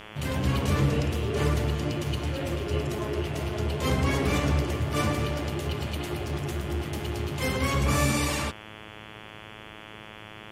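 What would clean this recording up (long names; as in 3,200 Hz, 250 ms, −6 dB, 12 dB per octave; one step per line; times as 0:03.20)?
hum removal 107.3 Hz, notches 32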